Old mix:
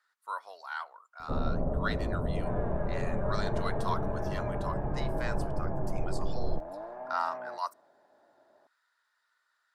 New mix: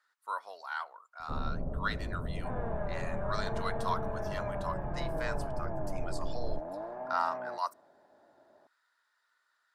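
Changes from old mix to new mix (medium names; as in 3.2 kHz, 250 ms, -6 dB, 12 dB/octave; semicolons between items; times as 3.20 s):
first sound -10.5 dB; master: add bass shelf 300 Hz +6.5 dB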